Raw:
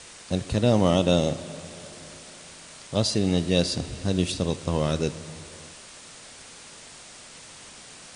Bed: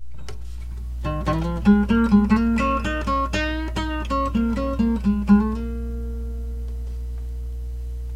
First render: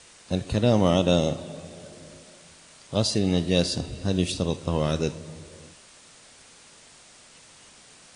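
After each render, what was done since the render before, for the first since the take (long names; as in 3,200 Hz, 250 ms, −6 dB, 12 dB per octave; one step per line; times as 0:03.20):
noise reduction from a noise print 6 dB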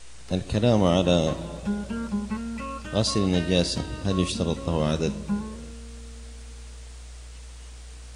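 mix in bed −13 dB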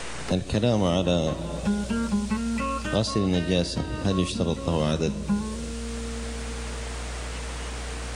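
multiband upward and downward compressor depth 70%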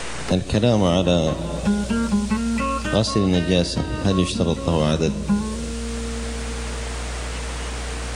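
level +5 dB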